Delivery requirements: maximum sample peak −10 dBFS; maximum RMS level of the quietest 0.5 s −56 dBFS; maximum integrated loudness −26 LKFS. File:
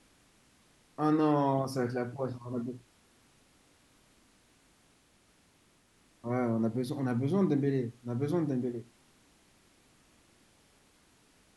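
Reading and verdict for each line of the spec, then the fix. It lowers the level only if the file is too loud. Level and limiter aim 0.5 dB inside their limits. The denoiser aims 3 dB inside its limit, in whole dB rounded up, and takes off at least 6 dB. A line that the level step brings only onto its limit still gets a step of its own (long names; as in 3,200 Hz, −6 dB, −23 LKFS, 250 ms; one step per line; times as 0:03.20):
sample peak −15.0 dBFS: in spec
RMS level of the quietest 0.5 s −66 dBFS: in spec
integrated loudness −31.5 LKFS: in spec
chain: no processing needed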